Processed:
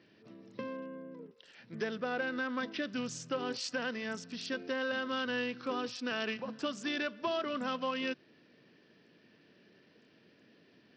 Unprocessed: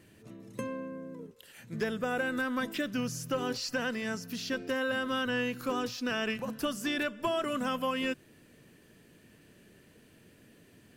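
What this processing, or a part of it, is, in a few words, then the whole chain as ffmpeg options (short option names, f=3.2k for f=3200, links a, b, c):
Bluetooth headset: -af "highpass=190,aresample=16000,aresample=44100,volume=-3dB" -ar 44100 -c:a sbc -b:a 64k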